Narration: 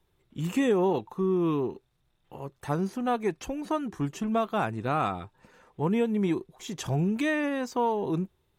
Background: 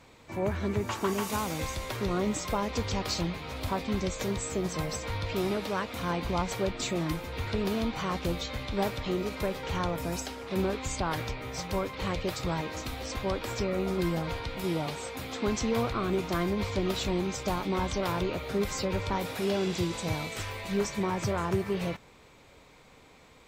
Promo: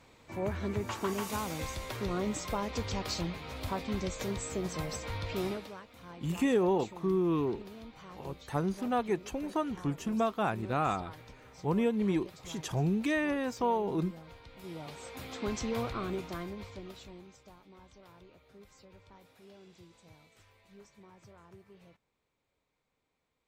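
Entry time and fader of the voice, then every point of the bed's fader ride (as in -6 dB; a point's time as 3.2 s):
5.85 s, -3.0 dB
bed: 5.47 s -4 dB
5.82 s -18 dB
14.41 s -18 dB
15.21 s -5.5 dB
16.03 s -5.5 dB
17.59 s -26.5 dB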